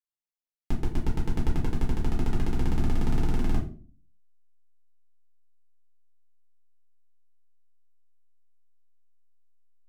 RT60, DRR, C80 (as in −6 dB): 0.40 s, −4.0 dB, 13.5 dB